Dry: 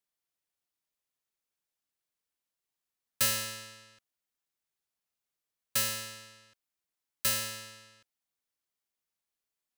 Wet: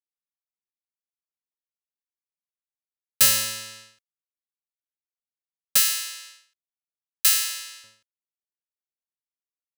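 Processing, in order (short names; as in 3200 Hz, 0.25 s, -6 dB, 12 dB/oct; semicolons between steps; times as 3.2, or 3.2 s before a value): 5.77–7.84 HPF 1300 Hz 12 dB/oct; expander -52 dBFS; high shelf 2200 Hz +8 dB; gain +3.5 dB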